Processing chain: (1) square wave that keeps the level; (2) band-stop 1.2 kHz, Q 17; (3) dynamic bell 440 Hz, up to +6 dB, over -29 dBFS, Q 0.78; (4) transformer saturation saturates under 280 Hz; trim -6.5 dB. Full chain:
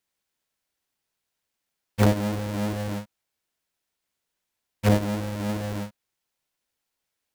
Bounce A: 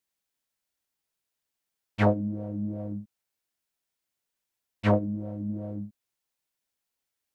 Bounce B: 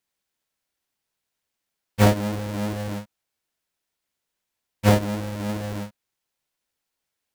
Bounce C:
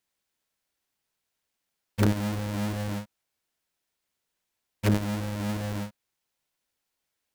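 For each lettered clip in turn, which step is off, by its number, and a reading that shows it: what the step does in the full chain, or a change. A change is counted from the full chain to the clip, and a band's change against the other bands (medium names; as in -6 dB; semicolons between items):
1, distortion -6 dB; 4, 250 Hz band -2.5 dB; 3, crest factor change -1.5 dB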